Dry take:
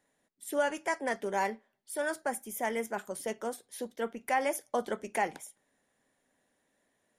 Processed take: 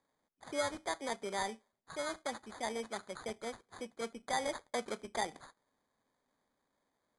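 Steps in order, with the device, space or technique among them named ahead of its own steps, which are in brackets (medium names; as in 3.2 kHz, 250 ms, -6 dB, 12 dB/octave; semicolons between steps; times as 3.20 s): crushed at another speed (playback speed 2×; sample-and-hold 8×; playback speed 0.5×); trim -6 dB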